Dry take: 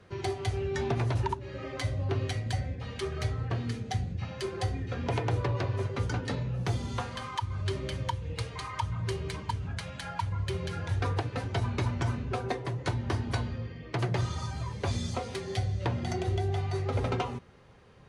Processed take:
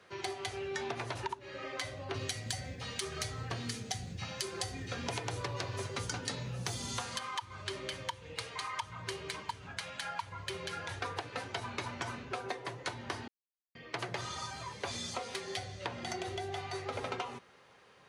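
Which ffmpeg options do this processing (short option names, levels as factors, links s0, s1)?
-filter_complex "[0:a]asettb=1/sr,asplit=3[s0][s1][s2];[s0]atrim=end=2.144[s3];[s1]atrim=start=2.14:end=7.19,asetpts=PTS-STARTPTS,afade=t=in:d=0.004:c=qsin,afade=t=out:st=5.046:d=0.004:c=qsin,bass=f=250:g=8,treble=f=4000:g=11[s4];[s2]atrim=start=7.186[s5];[s3][s4]acrossfade=d=0.004:c1=hsin:c2=qsin[s6];[s6][s5]acrossfade=d=0.004:c1=qsin:c2=hsin,asplit=3[s7][s8][s9];[s7]atrim=end=13.28,asetpts=PTS-STARTPTS,afade=t=out:st=13.276:d=0.004:c=hsin[s10];[s8]atrim=start=13.28:end=13.75,asetpts=PTS-STARTPTS,volume=0[s11];[s9]atrim=start=13.75,asetpts=PTS-STARTPTS,afade=t=in:d=0.004:c=hsin[s12];[s10][s11][s12]concat=n=3:v=0:a=1,highpass=f=870:p=1,acompressor=threshold=0.0158:ratio=6,volume=1.33"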